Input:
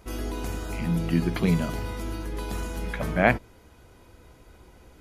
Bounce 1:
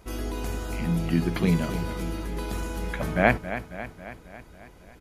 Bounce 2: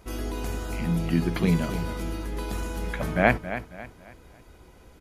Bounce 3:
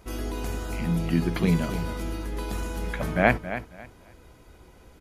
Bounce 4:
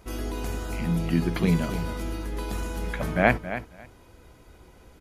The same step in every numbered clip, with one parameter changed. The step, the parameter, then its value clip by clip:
feedback echo, feedback: 60, 36, 23, 16%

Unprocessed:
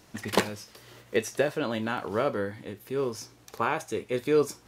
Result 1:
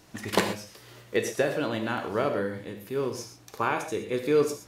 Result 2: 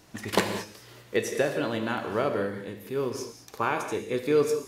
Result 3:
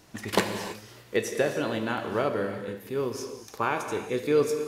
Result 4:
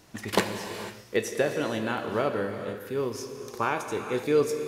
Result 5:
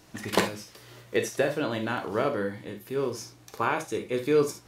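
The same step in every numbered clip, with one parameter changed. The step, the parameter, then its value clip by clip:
non-linear reverb, gate: 150, 240, 350, 520, 90 ms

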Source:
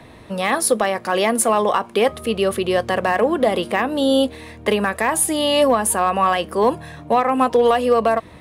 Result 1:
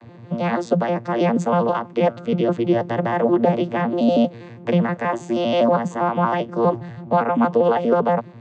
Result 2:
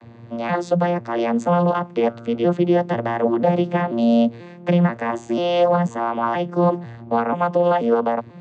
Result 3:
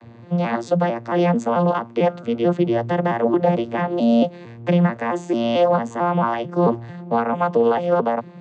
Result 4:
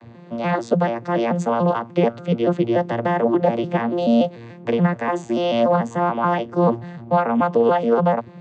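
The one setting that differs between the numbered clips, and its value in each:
arpeggiated vocoder, a note every: 80, 488, 222, 145 ms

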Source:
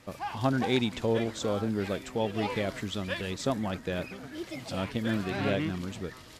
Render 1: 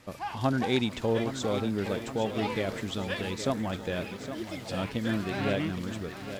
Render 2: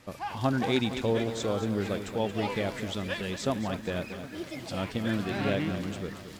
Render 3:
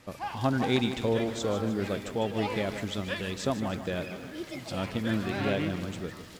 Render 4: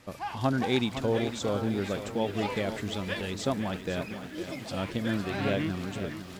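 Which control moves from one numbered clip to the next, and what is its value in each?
lo-fi delay, time: 0.816, 0.227, 0.153, 0.506 s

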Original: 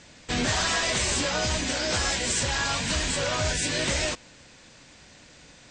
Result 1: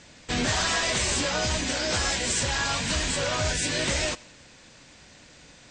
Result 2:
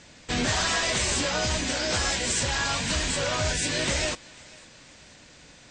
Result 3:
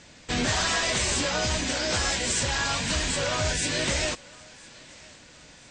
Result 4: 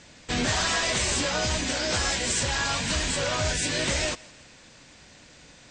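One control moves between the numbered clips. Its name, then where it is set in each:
thinning echo, time: 88, 495, 1012, 164 ms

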